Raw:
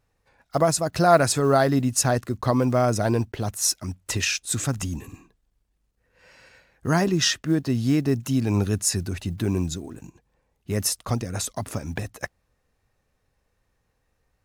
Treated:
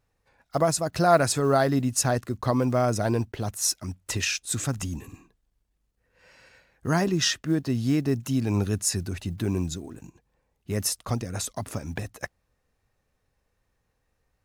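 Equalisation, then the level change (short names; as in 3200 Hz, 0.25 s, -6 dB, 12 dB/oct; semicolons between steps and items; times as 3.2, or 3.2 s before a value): none; -2.5 dB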